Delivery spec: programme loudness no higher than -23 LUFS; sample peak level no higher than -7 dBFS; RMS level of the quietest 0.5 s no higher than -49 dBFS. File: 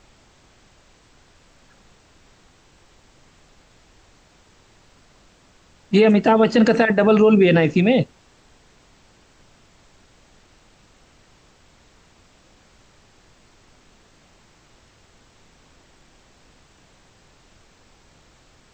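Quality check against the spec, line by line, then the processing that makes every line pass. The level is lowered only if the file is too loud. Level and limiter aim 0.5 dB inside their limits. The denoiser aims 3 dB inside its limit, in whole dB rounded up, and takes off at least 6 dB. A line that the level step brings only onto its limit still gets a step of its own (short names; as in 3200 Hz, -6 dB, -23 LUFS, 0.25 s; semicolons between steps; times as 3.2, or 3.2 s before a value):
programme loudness -16.0 LUFS: fail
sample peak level -6.0 dBFS: fail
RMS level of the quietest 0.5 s -54 dBFS: OK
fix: gain -7.5 dB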